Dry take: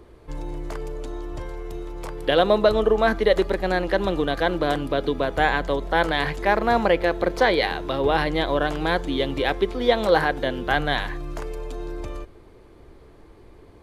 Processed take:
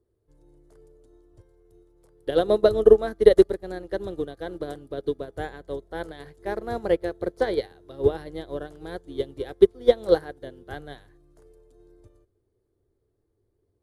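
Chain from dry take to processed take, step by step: fifteen-band EQ 100 Hz +12 dB, 400 Hz +8 dB, 1000 Hz -6 dB, 2500 Hz -10 dB, 10000 Hz +10 dB; upward expander 2.5:1, over -29 dBFS; gain +1 dB

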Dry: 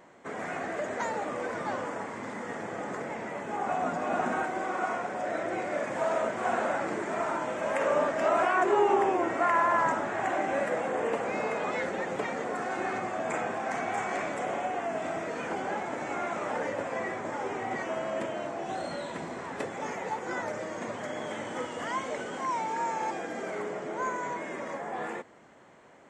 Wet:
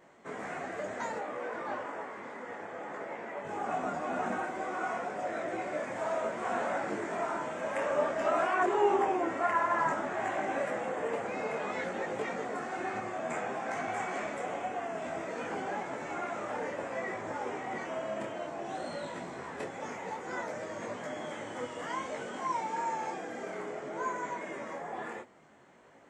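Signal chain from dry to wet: 1.18–3.45 tone controls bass -10 dB, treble -9 dB; detuned doubles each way 20 cents

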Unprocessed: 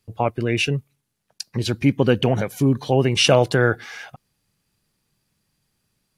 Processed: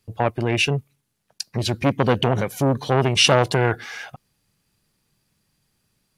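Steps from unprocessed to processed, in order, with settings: core saturation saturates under 1000 Hz; gain +2 dB

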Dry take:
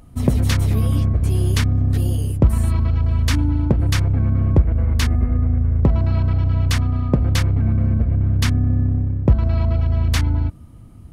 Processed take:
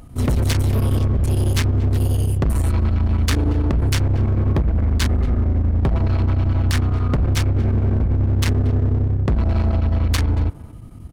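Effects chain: overloaded stage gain 19 dB; chopper 11 Hz, depth 60%, duty 85%; speakerphone echo 0.23 s, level -16 dB; gain +4.5 dB

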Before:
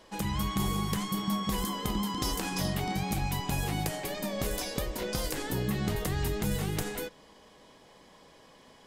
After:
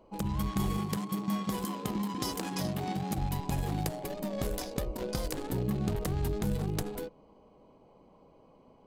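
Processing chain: Wiener smoothing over 25 samples; 0.78–3.18 HPF 120 Hz 12 dB/oct

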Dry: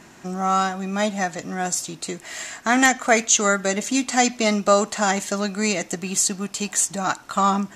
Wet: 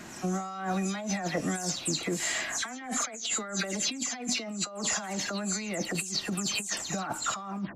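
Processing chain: spectral delay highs early, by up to 0.166 s; negative-ratio compressor -30 dBFS, ratio -1; gain -3.5 dB

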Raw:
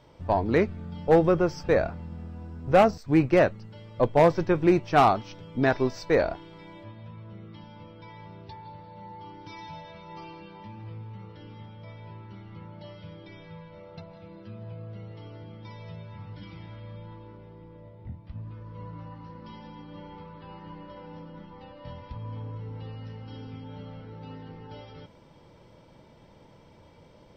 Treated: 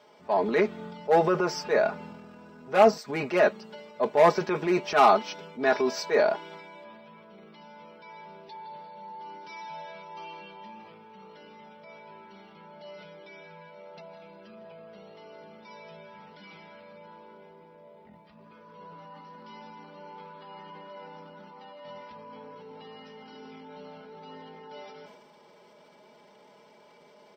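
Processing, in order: HPF 360 Hz 12 dB/oct; comb 4.8 ms, depth 85%; transient shaper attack -5 dB, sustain +6 dB

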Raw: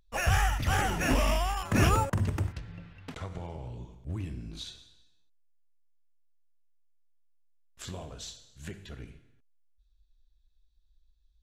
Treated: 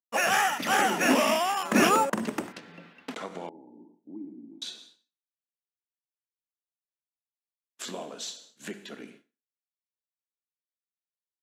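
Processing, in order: Chebyshev high-pass 210 Hz, order 4; expander -56 dBFS; 3.49–4.62 vocal tract filter u; gain +6.5 dB

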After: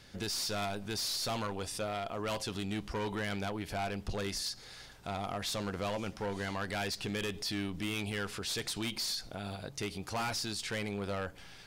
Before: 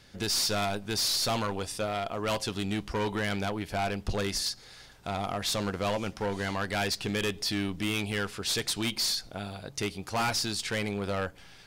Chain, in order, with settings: limiter -30 dBFS, peak gain reduction 9.5 dB

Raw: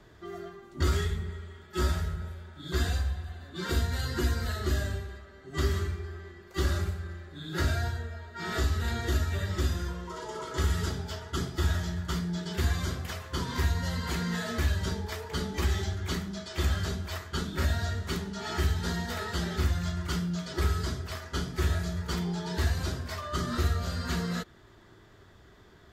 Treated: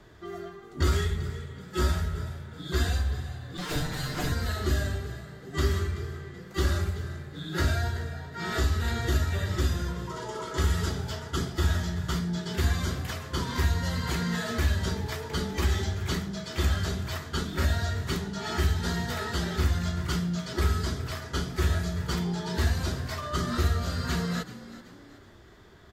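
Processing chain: 3.57–4.32 minimum comb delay 6.7 ms; frequency-shifting echo 0.38 s, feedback 40%, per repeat +55 Hz, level -16 dB; gain +2 dB

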